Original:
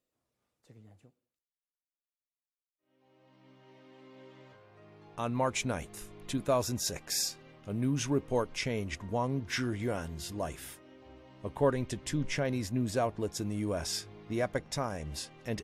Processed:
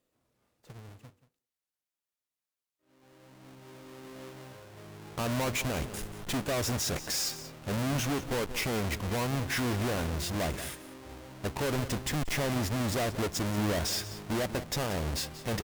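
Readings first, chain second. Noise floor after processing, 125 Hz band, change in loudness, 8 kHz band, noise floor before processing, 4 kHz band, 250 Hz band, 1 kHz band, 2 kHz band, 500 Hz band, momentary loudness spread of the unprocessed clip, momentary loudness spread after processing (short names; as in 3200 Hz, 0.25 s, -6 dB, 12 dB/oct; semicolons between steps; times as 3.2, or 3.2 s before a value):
under -85 dBFS, +3.0 dB, +1.5 dB, +2.5 dB, under -85 dBFS, +4.0 dB, +1.0 dB, +1.0 dB, +4.5 dB, -0.5 dB, 10 LU, 17 LU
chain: half-waves squared off; limiter -26 dBFS, peak gain reduction 9.5 dB; echo 0.182 s -15.5 dB; added harmonics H 5 -13 dB, 7 -20 dB, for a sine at -24.5 dBFS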